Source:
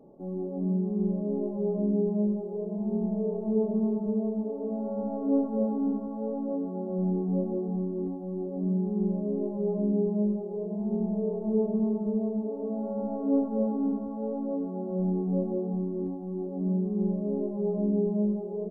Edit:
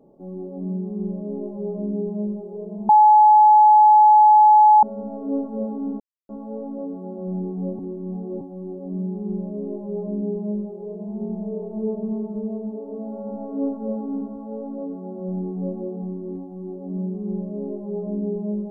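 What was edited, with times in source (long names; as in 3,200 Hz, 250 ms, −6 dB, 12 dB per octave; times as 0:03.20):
0:02.89–0:04.83: beep over 851 Hz −8.5 dBFS
0:06.00: splice in silence 0.29 s
0:07.50–0:08.12: reverse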